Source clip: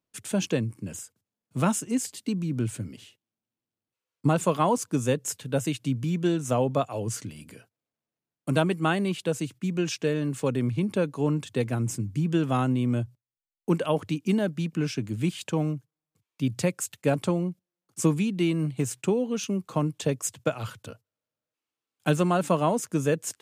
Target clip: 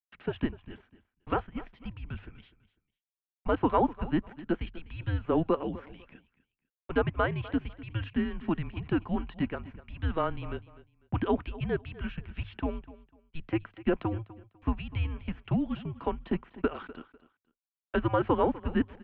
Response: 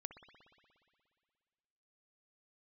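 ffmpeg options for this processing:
-filter_complex "[0:a]bandreject=f=50:t=h:w=6,bandreject=f=100:t=h:w=6,bandreject=f=150:t=h:w=6,bandreject=f=200:t=h:w=6,bandreject=f=250:t=h:w=6,bandreject=f=300:t=h:w=6,bandreject=f=350:t=h:w=6,agate=range=-33dB:threshold=-47dB:ratio=16:detection=peak,acrossover=split=2000[a][b];[b]acompressor=threshold=-44dB:ratio=6[c];[a][c]amix=inputs=2:normalize=0,asetrate=54243,aresample=44100,aecho=1:1:249|498:0.126|0.0315,highpass=f=410:t=q:w=0.5412,highpass=f=410:t=q:w=1.307,lowpass=f=3.2k:t=q:w=0.5176,lowpass=f=3.2k:t=q:w=0.7071,lowpass=f=3.2k:t=q:w=1.932,afreqshift=-330"

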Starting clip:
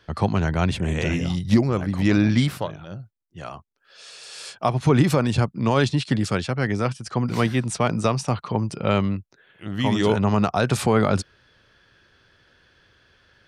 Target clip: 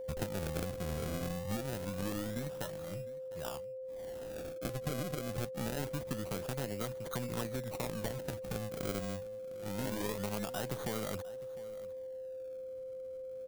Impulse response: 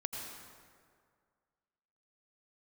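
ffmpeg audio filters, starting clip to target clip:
-filter_complex "[0:a]acompressor=threshold=-27dB:ratio=10,aeval=exprs='0.266*(cos(1*acos(clip(val(0)/0.266,-1,1)))-cos(1*PI/2))+0.0376*(cos(3*acos(clip(val(0)/0.266,-1,1)))-cos(3*PI/2))+0.00841*(cos(7*acos(clip(val(0)/0.266,-1,1)))-cos(7*PI/2))+0.0075*(cos(8*acos(clip(val(0)/0.266,-1,1)))-cos(8*PI/2))':c=same,aresample=16000,asoftclip=type=tanh:threshold=-26.5dB,aresample=44100,acrusher=samples=33:mix=1:aa=0.000001:lfo=1:lforange=33:lforate=0.25,aeval=exprs='val(0)+0.01*sin(2*PI*520*n/s)':c=same,crystalizer=i=1:c=0,asplit=2[a][b];[b]aecho=0:1:705:0.126[c];[a][c]amix=inputs=2:normalize=0"

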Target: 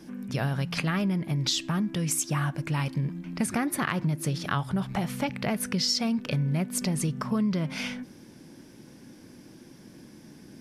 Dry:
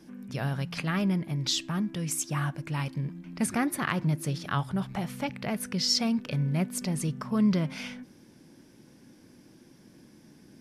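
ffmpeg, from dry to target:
-af "acompressor=threshold=-29dB:ratio=6,volume=5.5dB"

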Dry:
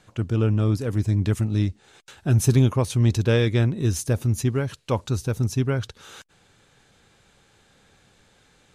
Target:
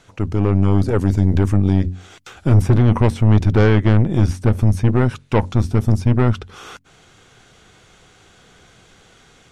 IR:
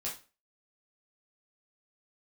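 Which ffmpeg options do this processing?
-filter_complex "[0:a]bandreject=f=50:t=h:w=6,bandreject=f=100:t=h:w=6,bandreject=f=150:t=h:w=6,bandreject=f=200:t=h:w=6,bandreject=f=250:t=h:w=6,bandreject=f=300:t=h:w=6,acrossover=split=2400[a][b];[a]aeval=exprs='0.398*(cos(1*acos(clip(val(0)/0.398,-1,1)))-cos(1*PI/2))+0.0398*(cos(8*acos(clip(val(0)/0.398,-1,1)))-cos(8*PI/2))':c=same[c];[b]acompressor=threshold=-51dB:ratio=6[d];[c][d]amix=inputs=2:normalize=0,alimiter=limit=-14.5dB:level=0:latency=1:release=15,dynaudnorm=f=300:g=3:m=3.5dB,asetrate=40517,aresample=44100,volume=5.5dB"

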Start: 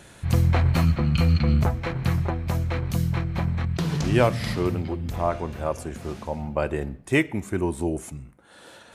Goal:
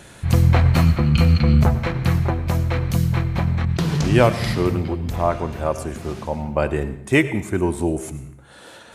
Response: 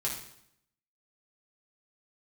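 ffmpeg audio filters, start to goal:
-filter_complex "[0:a]asplit=2[a][b];[1:a]atrim=start_sample=2205,adelay=94[c];[b][c]afir=irnorm=-1:irlink=0,volume=-18dB[d];[a][d]amix=inputs=2:normalize=0,volume=4.5dB"

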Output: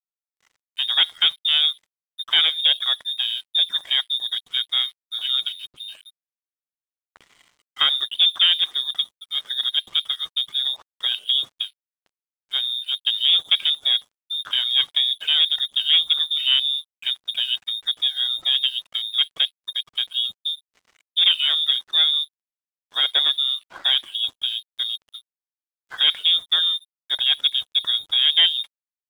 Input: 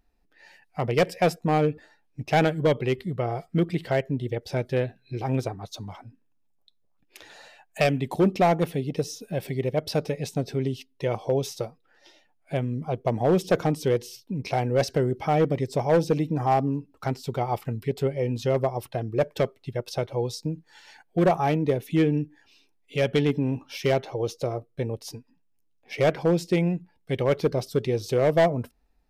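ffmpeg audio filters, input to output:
-af "lowpass=f=3.2k:t=q:w=0.5098,lowpass=f=3.2k:t=q:w=0.6013,lowpass=f=3.2k:t=q:w=0.9,lowpass=f=3.2k:t=q:w=2.563,afreqshift=-3800,aeval=exprs='sgn(val(0))*max(abs(val(0))-0.00398,0)':c=same,volume=3dB"

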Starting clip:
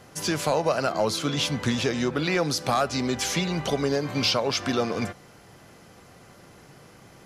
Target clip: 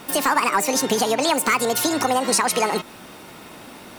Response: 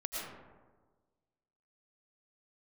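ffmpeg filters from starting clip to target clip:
-filter_complex "[0:a]asplit=2[a][b];[b]acompressor=threshold=-35dB:ratio=6,volume=0.5dB[c];[a][c]amix=inputs=2:normalize=0,asetrate=80262,aresample=44100,volume=3dB"

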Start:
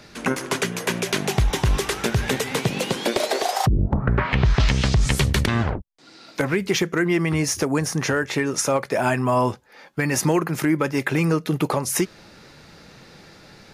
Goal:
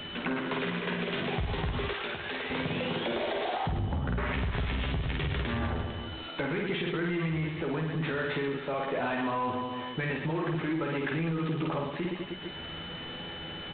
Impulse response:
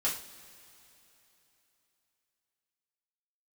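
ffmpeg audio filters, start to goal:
-filter_complex "[0:a]asplit=2[a][b];[b]adelay=12,volume=-5dB[c];[a][c]amix=inputs=2:normalize=0,asplit=2[d][e];[e]aecho=0:1:50|115|199.5|309.4|452.2:0.631|0.398|0.251|0.158|0.1[f];[d][f]amix=inputs=2:normalize=0,aeval=exprs='val(0)+0.00708*sin(2*PI*3000*n/s)':c=same,alimiter=limit=-12dB:level=0:latency=1:release=40,acompressor=threshold=-40dB:ratio=2,asettb=1/sr,asplit=3[g][h][i];[g]atrim=end=1.934[j];[h]atrim=start=1.93:end=2.5,asetpts=PTS-STARTPTS,afade=t=in:d=0.004:c=qsin,afade=t=out:st=0.566:d=0.004:c=qsin,highpass=f=710:p=1[k];[i]atrim=start=2.496[l];[j][k]acrossfade=d=0.004:c1=hsin:c2=qsin[m];[m][l]acrossfade=d=0.004:c1=qsin:c2=hsin,asoftclip=type=tanh:threshold=-26.5dB,volume=3.5dB" -ar 8000 -c:a adpcm_g726 -b:a 24k

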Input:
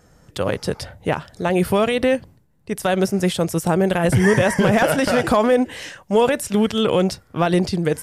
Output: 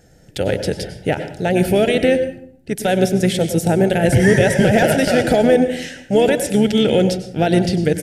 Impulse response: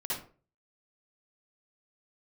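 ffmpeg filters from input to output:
-filter_complex "[0:a]asplit=2[a][b];[b]asetrate=29433,aresample=44100,atempo=1.49831,volume=-13dB[c];[a][c]amix=inputs=2:normalize=0,asuperstop=centerf=1100:order=4:qfactor=1.7,asplit=2[d][e];[1:a]atrim=start_sample=2205,asetrate=24696,aresample=44100[f];[e][f]afir=irnorm=-1:irlink=0,volume=-16.5dB[g];[d][g]amix=inputs=2:normalize=0,volume=1.5dB"

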